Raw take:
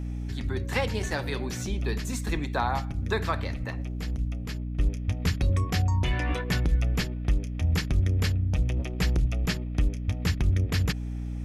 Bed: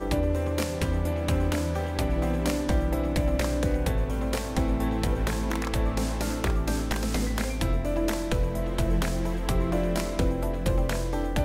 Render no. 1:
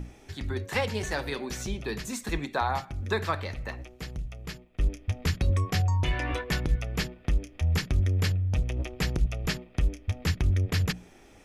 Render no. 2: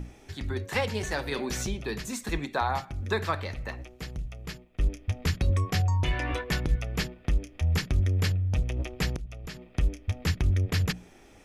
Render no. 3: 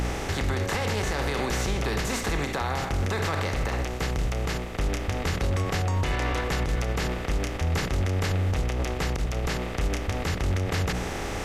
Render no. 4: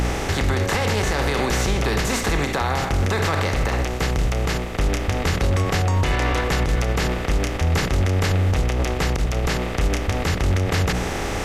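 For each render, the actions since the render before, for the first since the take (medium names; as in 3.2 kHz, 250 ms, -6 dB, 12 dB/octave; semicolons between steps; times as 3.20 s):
hum notches 60/120/180/240/300 Hz
1.31–1.73 s: level flattener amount 50%; 9.16–9.74 s: compression 2.5:1, threshold -41 dBFS
spectral levelling over time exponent 0.4; peak limiter -18 dBFS, peak gain reduction 11 dB
trim +6 dB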